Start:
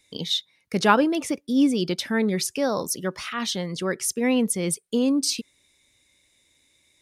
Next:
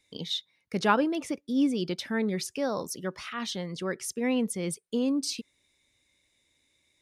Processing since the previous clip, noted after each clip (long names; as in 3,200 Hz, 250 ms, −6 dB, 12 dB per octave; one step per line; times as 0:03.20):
high-shelf EQ 6,900 Hz −6.5 dB
level −5.5 dB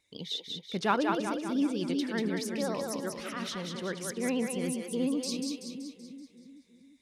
pitch vibrato 14 Hz 64 cents
echo with a time of its own for lows and highs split 360 Hz, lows 352 ms, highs 190 ms, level −4 dB
level −4 dB